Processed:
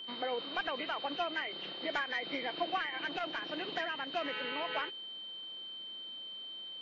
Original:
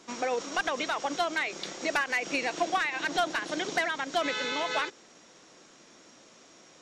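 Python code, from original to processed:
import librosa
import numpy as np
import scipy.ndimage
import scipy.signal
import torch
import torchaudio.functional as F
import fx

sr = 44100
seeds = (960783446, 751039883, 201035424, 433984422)

y = fx.freq_compress(x, sr, knee_hz=1700.0, ratio=1.5)
y = y + 10.0 ** (-36.0 / 20.0) * np.sin(2.0 * np.pi * 3100.0 * np.arange(len(y)) / sr)
y = fx.transformer_sat(y, sr, knee_hz=930.0, at=(3.03, 4.41))
y = y * 10.0 ** (-6.5 / 20.0)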